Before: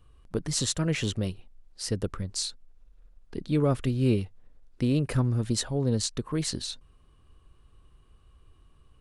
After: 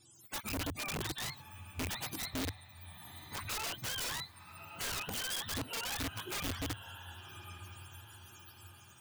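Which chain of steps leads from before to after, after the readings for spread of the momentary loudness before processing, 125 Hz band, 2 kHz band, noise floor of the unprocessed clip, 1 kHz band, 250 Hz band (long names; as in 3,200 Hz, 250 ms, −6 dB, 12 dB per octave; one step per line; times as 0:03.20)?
11 LU, −17.0 dB, +1.5 dB, −59 dBFS, −0.5 dB, −15.5 dB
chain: frequency axis turned over on the octave scale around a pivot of 620 Hz
high-shelf EQ 6,600 Hz +5.5 dB
downward compressor 5 to 1, threshold −35 dBFS, peak gain reduction 13 dB
on a send: feedback delay with all-pass diffusion 1,173 ms, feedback 43%, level −12.5 dB
on the sum: wrap-around overflow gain 32.5 dB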